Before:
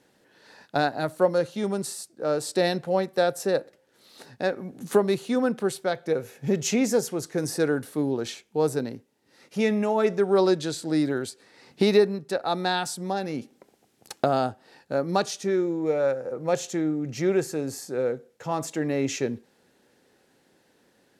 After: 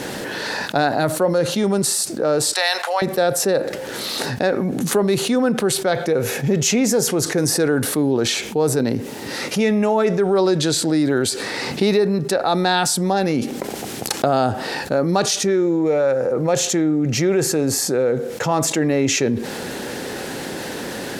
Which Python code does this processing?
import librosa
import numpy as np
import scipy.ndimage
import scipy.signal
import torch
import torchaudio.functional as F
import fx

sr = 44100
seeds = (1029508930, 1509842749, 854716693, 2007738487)

y = fx.highpass(x, sr, hz=830.0, slope=24, at=(2.53, 3.02))
y = fx.env_flatten(y, sr, amount_pct=70)